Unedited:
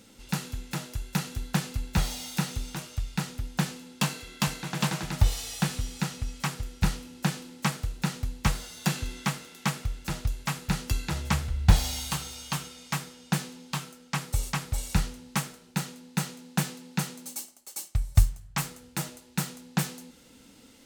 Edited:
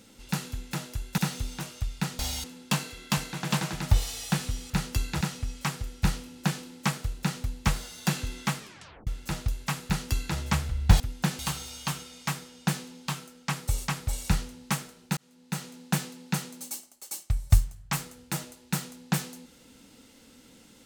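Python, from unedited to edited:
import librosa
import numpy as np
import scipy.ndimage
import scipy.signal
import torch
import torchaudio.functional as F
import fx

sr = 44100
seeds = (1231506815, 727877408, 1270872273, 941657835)

y = fx.edit(x, sr, fx.cut(start_s=1.18, length_s=1.16),
    fx.swap(start_s=3.35, length_s=0.39, other_s=11.79, other_length_s=0.25),
    fx.tape_stop(start_s=9.37, length_s=0.49),
    fx.duplicate(start_s=10.65, length_s=0.51, to_s=6.0),
    fx.fade_in_span(start_s=15.82, length_s=0.59), tone=tone)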